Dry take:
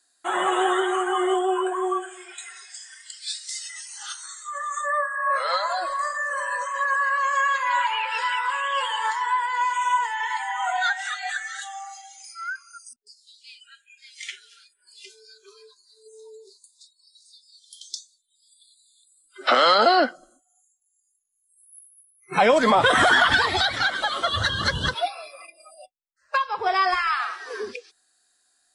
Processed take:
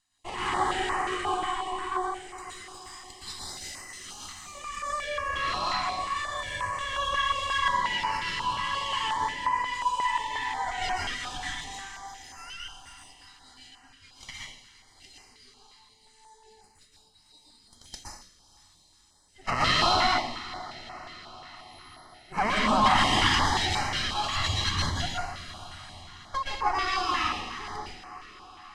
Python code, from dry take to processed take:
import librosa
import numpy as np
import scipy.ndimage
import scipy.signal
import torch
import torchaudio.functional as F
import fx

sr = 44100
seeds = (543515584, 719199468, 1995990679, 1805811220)

y = fx.lower_of_two(x, sr, delay_ms=1.0)
y = scipy.signal.sosfilt(scipy.signal.butter(2, 7200.0, 'lowpass', fs=sr, output='sos'), y)
y = fx.echo_diffused(y, sr, ms=503, feedback_pct=64, wet_db=-16.0)
y = fx.rev_plate(y, sr, seeds[0], rt60_s=0.68, hf_ratio=0.95, predelay_ms=105, drr_db=-4.0)
y = fx.filter_held_notch(y, sr, hz=5.6, low_hz=470.0, high_hz=3500.0)
y = F.gain(torch.from_numpy(y), -6.0).numpy()